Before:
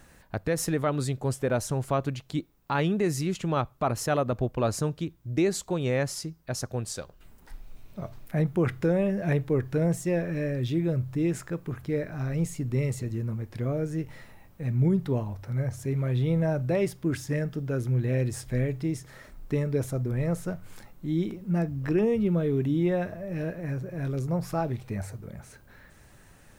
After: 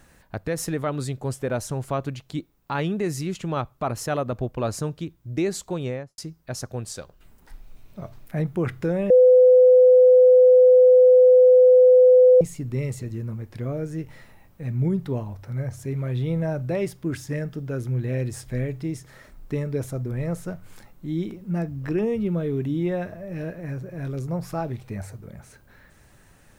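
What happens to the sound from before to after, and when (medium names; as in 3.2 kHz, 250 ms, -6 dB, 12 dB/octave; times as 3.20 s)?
5.78–6.18 s: studio fade out
9.10–12.41 s: bleep 505 Hz -9.5 dBFS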